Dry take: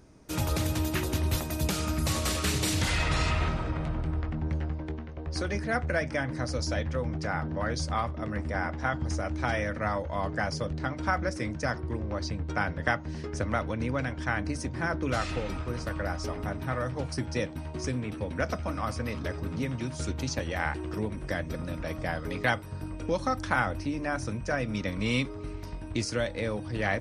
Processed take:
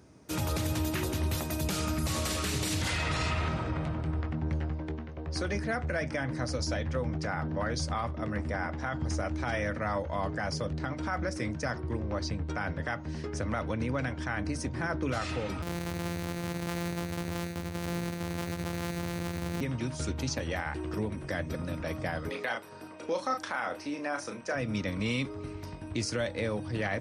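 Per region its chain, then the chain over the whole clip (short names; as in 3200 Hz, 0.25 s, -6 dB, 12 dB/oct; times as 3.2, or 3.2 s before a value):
15.62–19.61 sample sorter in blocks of 256 samples + echo 75 ms -12.5 dB
22.29–24.55 HPF 350 Hz + high shelf 11000 Hz -4 dB + doubler 34 ms -7 dB
whole clip: HPF 68 Hz 24 dB/oct; limiter -21.5 dBFS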